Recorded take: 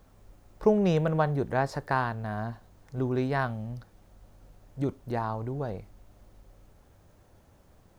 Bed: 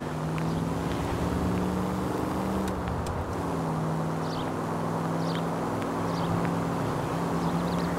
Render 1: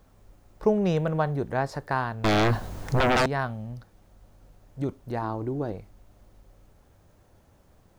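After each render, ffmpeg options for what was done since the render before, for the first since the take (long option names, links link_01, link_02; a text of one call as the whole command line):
ffmpeg -i in.wav -filter_complex "[0:a]asettb=1/sr,asplit=3[link_01][link_02][link_03];[link_01]atrim=end=2.244[link_04];[link_02]atrim=start=2.24:end=3.26,asetpts=PTS-STARTPTS,afade=type=in:duration=0.004:curve=qsin,afade=type=out:start_time=1.016:duration=0.004:curve=qsin,aeval=exprs='0.126*sin(PI/2*6.31*val(0)/0.126)':channel_layout=same[link_05];[link_03]atrim=start=3.256[link_06];[link_04][link_05]acrossfade=duration=0.004:curve1=hsin:curve2=qsin[link_07];[link_07][link_06]acrossfade=duration=0.004:curve1=qsin:curve2=hsin,asettb=1/sr,asplit=3[link_08][link_09][link_10];[link_08]atrim=end=5.224[link_11];[link_09]atrim=start=5.22:end=5.72,asetpts=PTS-STARTPTS,afade=type=in:duration=0.004:curve=qsin,afade=type=out:start_time=0.496:duration=0.004:curve=qsin,equalizer=frequency=320:width_type=o:width=0.47:gain=13[link_12];[link_10]atrim=start=5.716[link_13];[link_11][link_12]acrossfade=duration=0.004:curve1=hsin:curve2=qsin[link_14];[link_14][link_13]acrossfade=duration=0.004:curve1=qsin:curve2=hsin" out.wav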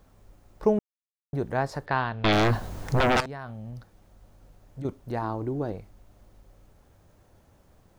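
ffmpeg -i in.wav -filter_complex "[0:a]asettb=1/sr,asplit=3[link_01][link_02][link_03];[link_01]atrim=end=1.864[link_04];[link_02]atrim=start=1.86:end=2.33,asetpts=PTS-STARTPTS,afade=type=in:duration=0.004:curve=qsin,afade=type=out:start_time=0.466:duration=0.004:curve=qsin,lowpass=frequency=3400:width_type=q:width=2.1[link_05];[link_03]atrim=start=2.326[link_06];[link_04][link_05]acrossfade=duration=0.004:curve1=hsin:curve2=qsin[link_07];[link_07][link_06]acrossfade=duration=0.004:curve1=qsin:curve2=hsin,asettb=1/sr,asplit=3[link_08][link_09][link_10];[link_08]atrim=end=3.204[link_11];[link_09]atrim=start=3.2:end=4.85,asetpts=PTS-STARTPTS,afade=type=in:duration=0.004:curve=qsin,afade=type=out:start_time=1.646:duration=0.004:curve=qsin,acompressor=threshold=-33dB:ratio=8:attack=3.2:release=140:knee=1:detection=peak[link_12];[link_10]atrim=start=4.846[link_13];[link_11][link_12]acrossfade=duration=0.004:curve1=hsin:curve2=qsin[link_14];[link_14][link_13]acrossfade=duration=0.004:curve1=qsin:curve2=hsin,asplit=3[link_15][link_16][link_17];[link_15]atrim=end=0.79,asetpts=PTS-STARTPTS,afade=type=out:start_time=0.786:duration=0.004:curve=hsin[link_18];[link_16]atrim=start=0.79:end=1.33,asetpts=PTS-STARTPTS,volume=0[link_19];[link_17]atrim=start=1.33,asetpts=PTS-STARTPTS,afade=type=in:duration=0.004:curve=hsin[link_20];[link_18][link_19][link_20]concat=n=3:v=0:a=1" out.wav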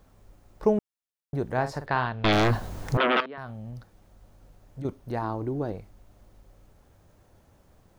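ffmpeg -i in.wav -filter_complex "[0:a]asettb=1/sr,asplit=3[link_01][link_02][link_03];[link_01]atrim=end=1.514[link_04];[link_02]atrim=start=1.51:end=2.07,asetpts=PTS-STARTPTS,afade=type=in:duration=0.004:curve=qsin,afade=type=out:start_time=0.556:duration=0.004:curve=qsin,asplit=2[link_05][link_06];[link_06]adelay=48,volume=-10.5dB[link_07];[link_05][link_07]amix=inputs=2:normalize=0,atrim=end_sample=24696[link_08];[link_03]atrim=start=2.066[link_09];[link_04][link_08]acrossfade=duration=0.004:curve1=hsin:curve2=qsin[link_10];[link_10][link_09]acrossfade=duration=0.004:curve1=qsin:curve2=hsin,asettb=1/sr,asplit=3[link_11][link_12][link_13];[link_11]atrim=end=2.974[link_14];[link_12]atrim=start=2.97:end=3.38,asetpts=PTS-STARTPTS,afade=type=in:duration=0.004:curve=qsin,afade=type=out:start_time=0.406:duration=0.004:curve=qsin,highpass=frequency=240:width=0.5412,highpass=frequency=240:width=1.3066,equalizer=frequency=800:width_type=q:width=4:gain=-8,equalizer=frequency=1200:width_type=q:width=4:gain=5,equalizer=frequency=3200:width_type=q:width=4:gain=6,lowpass=frequency=3400:width=0.5412,lowpass=frequency=3400:width=1.3066[link_15];[link_13]atrim=start=3.376[link_16];[link_14][link_15]acrossfade=duration=0.004:curve1=hsin:curve2=qsin[link_17];[link_17][link_16]acrossfade=duration=0.004:curve1=qsin:curve2=hsin,asettb=1/sr,asplit=3[link_18][link_19][link_20];[link_18]atrim=end=4.814[link_21];[link_19]atrim=start=4.81:end=5.75,asetpts=PTS-STARTPTS,afade=type=in:duration=0.004:curve=qsin,afade=type=out:start_time=0.936:duration=0.004:curve=qsin,bandreject=frequency=7400:width=12[link_22];[link_20]atrim=start=5.746[link_23];[link_21][link_22]acrossfade=duration=0.004:curve1=hsin:curve2=qsin[link_24];[link_24][link_23]acrossfade=duration=0.004:curve1=qsin:curve2=hsin" out.wav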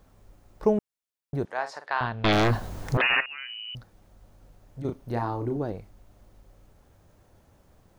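ffmpeg -i in.wav -filter_complex "[0:a]asettb=1/sr,asplit=3[link_01][link_02][link_03];[link_01]atrim=end=1.454[link_04];[link_02]atrim=start=1.45:end=2.01,asetpts=PTS-STARTPTS,afade=type=in:duration=0.004:curve=qsin,afade=type=out:start_time=0.556:duration=0.004:curve=qsin,highpass=740,lowpass=7500[link_05];[link_03]atrim=start=2.006[link_06];[link_04][link_05]acrossfade=duration=0.004:curve1=hsin:curve2=qsin[link_07];[link_07][link_06]acrossfade=duration=0.004:curve1=qsin:curve2=hsin,asettb=1/sr,asplit=3[link_08][link_09][link_10];[link_08]atrim=end=3.014[link_11];[link_09]atrim=start=3.01:end=3.75,asetpts=PTS-STARTPTS,afade=type=in:duration=0.004:curve=qsin,afade=type=out:start_time=0.736:duration=0.004:curve=qsin,lowpass=frequency=2600:width_type=q:width=0.5098,lowpass=frequency=2600:width_type=q:width=0.6013,lowpass=frequency=2600:width_type=q:width=0.9,lowpass=frequency=2600:width_type=q:width=2.563,afreqshift=-3100[link_12];[link_10]atrim=start=3.746[link_13];[link_11][link_12]acrossfade=duration=0.004:curve1=hsin:curve2=qsin[link_14];[link_14][link_13]acrossfade=duration=0.004:curve1=qsin:curve2=hsin,asettb=1/sr,asplit=3[link_15][link_16][link_17];[link_15]atrim=end=4.794[link_18];[link_16]atrim=start=4.79:end=5.57,asetpts=PTS-STARTPTS,afade=type=in:duration=0.004:curve=qsin,afade=type=out:start_time=0.776:duration=0.004:curve=qsin,asplit=2[link_19][link_20];[link_20]adelay=34,volume=-6dB[link_21];[link_19][link_21]amix=inputs=2:normalize=0,atrim=end_sample=34398[link_22];[link_17]atrim=start=5.566[link_23];[link_18][link_22]acrossfade=duration=0.004:curve1=hsin:curve2=qsin[link_24];[link_24][link_23]acrossfade=duration=0.004:curve1=qsin:curve2=hsin" out.wav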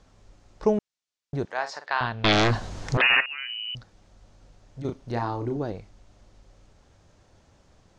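ffmpeg -i in.wav -af "lowpass=frequency=6900:width=0.5412,lowpass=frequency=6900:width=1.3066,highshelf=frequency=2600:gain=8.5" out.wav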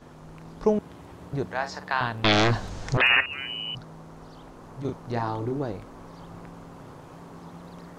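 ffmpeg -i in.wav -i bed.wav -filter_complex "[1:a]volume=-16dB[link_01];[0:a][link_01]amix=inputs=2:normalize=0" out.wav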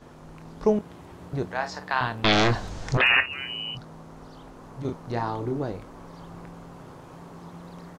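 ffmpeg -i in.wav -filter_complex "[0:a]asplit=2[link_01][link_02];[link_02]adelay=23,volume=-12.5dB[link_03];[link_01][link_03]amix=inputs=2:normalize=0" out.wav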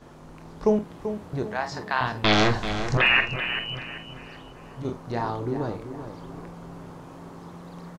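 ffmpeg -i in.wav -filter_complex "[0:a]asplit=2[link_01][link_02];[link_02]adelay=47,volume=-12dB[link_03];[link_01][link_03]amix=inputs=2:normalize=0,asplit=2[link_04][link_05];[link_05]adelay=387,lowpass=frequency=3800:poles=1,volume=-9.5dB,asplit=2[link_06][link_07];[link_07]adelay=387,lowpass=frequency=3800:poles=1,volume=0.4,asplit=2[link_08][link_09];[link_09]adelay=387,lowpass=frequency=3800:poles=1,volume=0.4,asplit=2[link_10][link_11];[link_11]adelay=387,lowpass=frequency=3800:poles=1,volume=0.4[link_12];[link_04][link_06][link_08][link_10][link_12]amix=inputs=5:normalize=0" out.wav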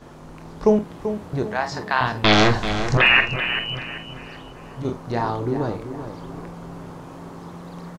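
ffmpeg -i in.wav -af "volume=4.5dB" out.wav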